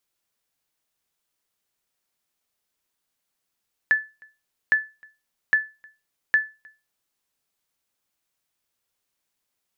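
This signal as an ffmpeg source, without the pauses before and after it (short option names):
-f lavfi -i "aevalsrc='0.299*(sin(2*PI*1740*mod(t,0.81))*exp(-6.91*mod(t,0.81)/0.27)+0.0335*sin(2*PI*1740*max(mod(t,0.81)-0.31,0))*exp(-6.91*max(mod(t,0.81)-0.31,0)/0.27))':d=3.24:s=44100"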